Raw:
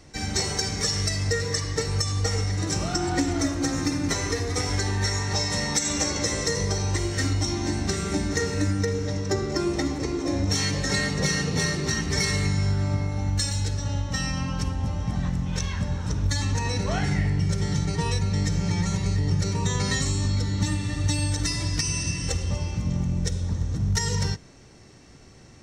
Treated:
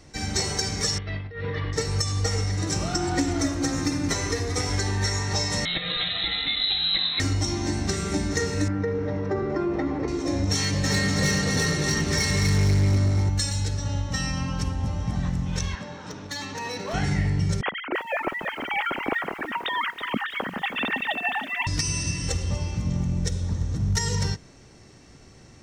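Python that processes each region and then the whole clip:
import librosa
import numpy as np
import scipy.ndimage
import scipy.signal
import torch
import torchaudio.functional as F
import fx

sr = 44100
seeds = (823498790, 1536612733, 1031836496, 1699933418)

y = fx.chain(x, sr, fx.ellip_lowpass(hz=3400.0, order=4, stop_db=60),
    fx.over_compress(threshold_db=-30.0, ratio=-0.5), at=(0.98, 1.73))
y = fx.chain(y, sr, fx.high_shelf(hz=3100.0, db=7.5),
    fx.freq_invert(carrier_hz=4000), at=(5.65, 7.2))
y = fx.chain(y, sr, fx.lowpass(hz=1600.0, slope=12),
    fx.low_shelf(hz=150.0, db=-9.5),
    fx.env_flatten(amount_pct=50), at=(8.68, 10.08))
y = fx.chain(y, sr, fx.echo_split(split_hz=600.0, low_ms=122, high_ms=244, feedback_pct=52, wet_db=-4.5),
    fx.overload_stage(gain_db=17.0), at=(10.6, 13.29))
y = fx.chain(y, sr, fx.bandpass_edges(low_hz=290.0, high_hz=5100.0),
    fx.clip_hard(threshold_db=-26.5), at=(15.75, 16.94))
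y = fx.chain(y, sr, fx.sine_speech(),
    fx.over_compress(threshold_db=-28.0, ratio=-0.5),
    fx.echo_crushed(ms=324, feedback_pct=35, bits=8, wet_db=-9), at=(17.61, 21.67))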